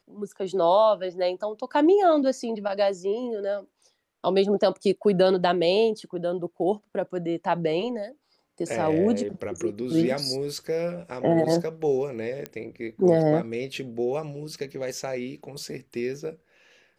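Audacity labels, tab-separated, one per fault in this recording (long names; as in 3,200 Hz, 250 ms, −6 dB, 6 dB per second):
12.460000	12.460000	click −17 dBFS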